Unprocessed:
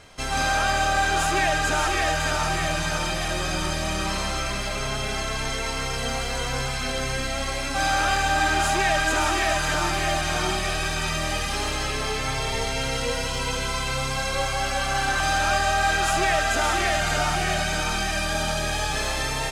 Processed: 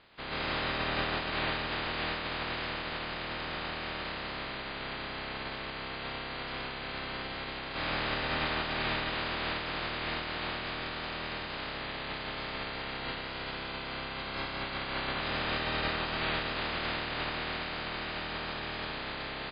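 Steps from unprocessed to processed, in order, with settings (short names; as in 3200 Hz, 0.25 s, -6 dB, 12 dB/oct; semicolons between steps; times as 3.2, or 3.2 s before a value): spectral limiter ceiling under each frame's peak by 27 dB; air absorption 230 m; gain -6 dB; MP3 24 kbps 11025 Hz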